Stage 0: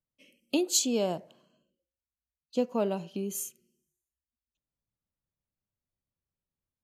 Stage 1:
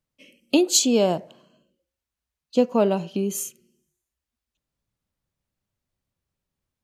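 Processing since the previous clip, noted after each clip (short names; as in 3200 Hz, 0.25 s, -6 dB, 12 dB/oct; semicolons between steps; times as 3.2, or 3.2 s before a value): high shelf 8600 Hz -6.5 dB; gain +9 dB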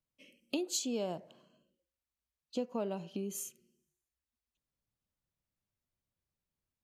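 compressor 2:1, threshold -30 dBFS, peak gain reduction 9.5 dB; gain -8.5 dB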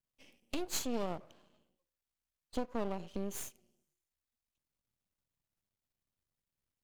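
half-wave rectifier; gain +2.5 dB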